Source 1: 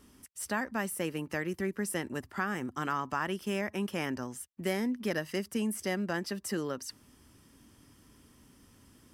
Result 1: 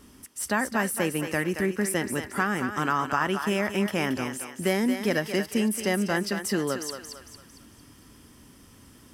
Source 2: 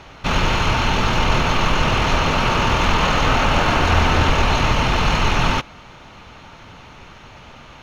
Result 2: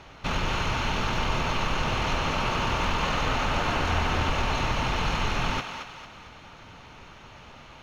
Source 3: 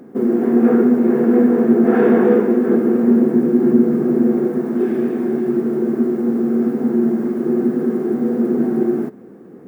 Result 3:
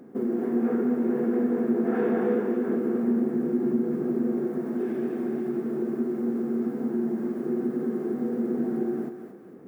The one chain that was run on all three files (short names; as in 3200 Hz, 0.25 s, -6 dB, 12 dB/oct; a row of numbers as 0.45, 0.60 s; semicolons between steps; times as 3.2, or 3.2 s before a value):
compressor 1.5:1, threshold -22 dBFS; thinning echo 0.226 s, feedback 46%, high-pass 510 Hz, level -6.5 dB; match loudness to -27 LUFS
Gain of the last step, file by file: +7.0, -6.5, -7.5 dB